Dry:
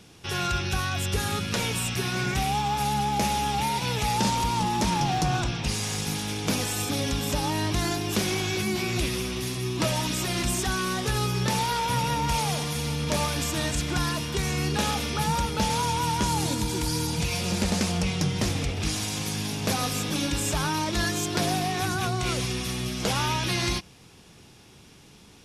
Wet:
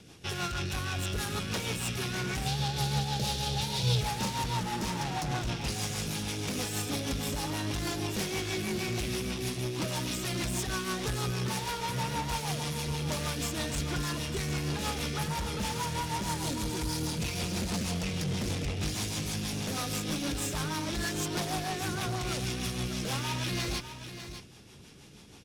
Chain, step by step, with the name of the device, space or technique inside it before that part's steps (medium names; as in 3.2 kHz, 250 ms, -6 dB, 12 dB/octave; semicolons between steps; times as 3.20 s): overdriven rotary cabinet (valve stage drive 30 dB, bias 0.4; rotary cabinet horn 6.3 Hz); 2.46–4.01 s: graphic EQ 125/250/500/1000/2000/4000 Hz +12/-8/+5/-5/-6/+10 dB; delay 600 ms -10.5 dB; trim +2 dB